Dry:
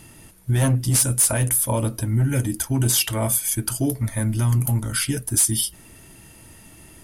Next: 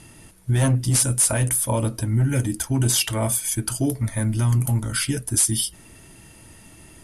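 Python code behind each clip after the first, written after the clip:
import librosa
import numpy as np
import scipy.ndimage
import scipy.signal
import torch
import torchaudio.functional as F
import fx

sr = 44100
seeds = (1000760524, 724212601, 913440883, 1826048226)

y = scipy.signal.sosfilt(scipy.signal.butter(4, 11000.0, 'lowpass', fs=sr, output='sos'), x)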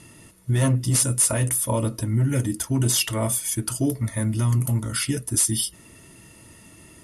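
y = fx.notch_comb(x, sr, f0_hz=790.0)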